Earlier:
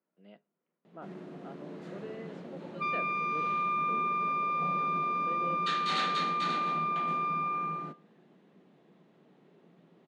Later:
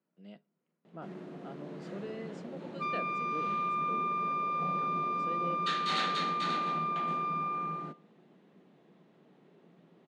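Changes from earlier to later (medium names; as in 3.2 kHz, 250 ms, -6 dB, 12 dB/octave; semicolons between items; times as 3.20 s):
speech: add tone controls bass +9 dB, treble +14 dB; second sound: remove resonant high-pass 1.6 kHz, resonance Q 8.8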